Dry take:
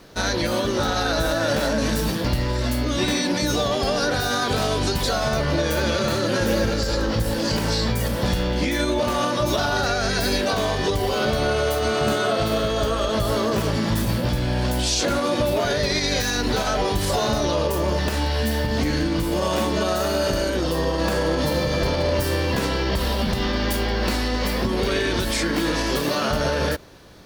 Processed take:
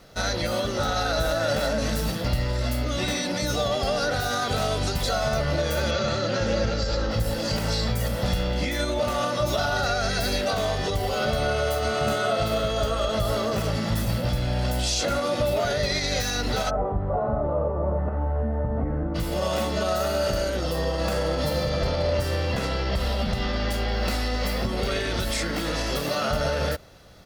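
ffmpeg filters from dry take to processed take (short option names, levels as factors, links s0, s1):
-filter_complex "[0:a]asettb=1/sr,asplit=3[s0][s1][s2];[s0]atrim=end=5.914[s3];[s1]atrim=start=5.91:end=7.11,asetpts=PTS-STARTPTS,afade=t=in:d=0.004:c=qsin,afade=t=out:st=1.196:d=0.004:c=qsin,lowpass=f=6500:w=0.5412,lowpass=f=6500:w=1.3066[s4];[s2]atrim=start=7.106[s5];[s3][s4]acrossfade=d=0.004:c1=hsin:c2=qsin[s6];[s6][s5]acrossfade=d=0.004:c1=qsin:c2=hsin,asplit=3[s7][s8][s9];[s7]afade=t=out:st=16.69:d=0.02[s10];[s8]lowpass=f=1200:w=0.5412,lowpass=f=1200:w=1.3066,afade=t=in:st=16.69:d=0.02,afade=t=out:st=19.14:d=0.02[s11];[s9]afade=t=in:st=19.14:d=0.02[s12];[s10][s11][s12]amix=inputs=3:normalize=0,asettb=1/sr,asplit=3[s13][s14][s15];[s13]atrim=end=21.694[s16];[s14]atrim=start=21.69:end=23.92,asetpts=PTS-STARTPTS,afade=t=in:d=0.004:c=qsin,afade=t=out:st=2.226:d=0.004:c=qsin,highshelf=f=11000:g=-12[s17];[s15]atrim=start=23.916[s18];[s16][s17]acrossfade=d=0.004:c1=hsin:c2=qsin[s19];[s19][s18]acrossfade=d=0.004:c1=qsin:c2=hsin,aecho=1:1:1.5:0.43,volume=0.631"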